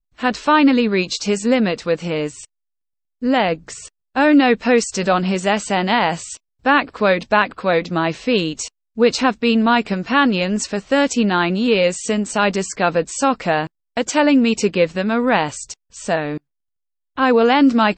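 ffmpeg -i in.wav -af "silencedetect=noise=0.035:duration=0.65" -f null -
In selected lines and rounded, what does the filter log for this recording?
silence_start: 2.44
silence_end: 3.22 | silence_duration: 0.78
silence_start: 16.38
silence_end: 17.17 | silence_duration: 0.80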